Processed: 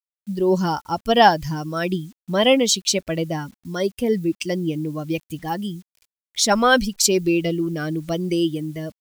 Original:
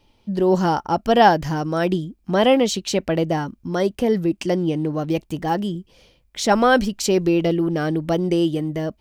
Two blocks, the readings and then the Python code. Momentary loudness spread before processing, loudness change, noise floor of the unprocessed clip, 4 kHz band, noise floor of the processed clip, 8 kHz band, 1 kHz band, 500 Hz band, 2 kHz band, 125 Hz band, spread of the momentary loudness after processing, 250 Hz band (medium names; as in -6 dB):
9 LU, -0.5 dB, -61 dBFS, +5.0 dB, under -85 dBFS, +8.0 dB, -1.0 dB, -2.0 dB, +1.5 dB, -2.5 dB, 13 LU, -2.0 dB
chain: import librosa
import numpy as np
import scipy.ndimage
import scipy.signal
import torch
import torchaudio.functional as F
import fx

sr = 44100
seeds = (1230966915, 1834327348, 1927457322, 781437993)

y = fx.bin_expand(x, sr, power=1.5)
y = fx.low_shelf(y, sr, hz=62.0, db=2.5)
y = fx.quant_dither(y, sr, seeds[0], bits=10, dither='none')
y = fx.high_shelf(y, sr, hz=2300.0, db=11.0)